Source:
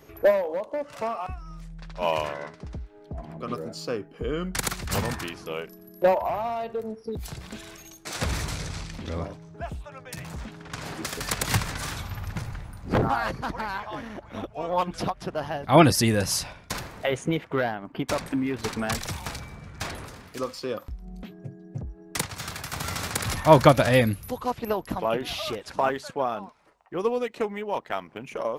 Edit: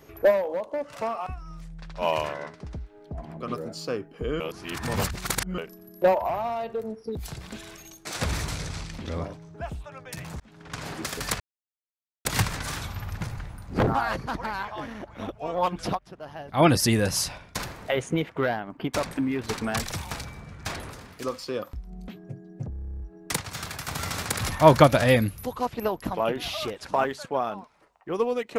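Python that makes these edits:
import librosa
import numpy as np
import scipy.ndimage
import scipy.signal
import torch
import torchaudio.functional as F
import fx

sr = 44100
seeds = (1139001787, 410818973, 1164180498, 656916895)

y = fx.edit(x, sr, fx.reverse_span(start_s=4.4, length_s=1.18),
    fx.fade_in_span(start_s=10.4, length_s=0.34),
    fx.insert_silence(at_s=11.4, length_s=0.85),
    fx.fade_in_from(start_s=15.14, length_s=0.84, curve='qua', floor_db=-12.5),
    fx.stutter(start_s=21.85, slice_s=0.03, count=11), tone=tone)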